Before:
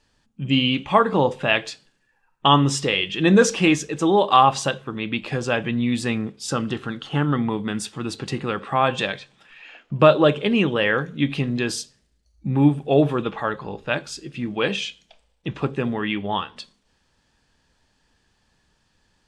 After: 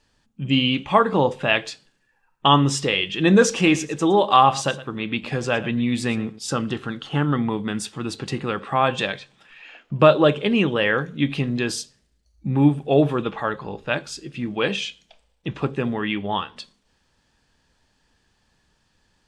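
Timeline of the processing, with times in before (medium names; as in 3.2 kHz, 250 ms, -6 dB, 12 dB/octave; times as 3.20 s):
3.43–6.39 s: delay 114 ms -16.5 dB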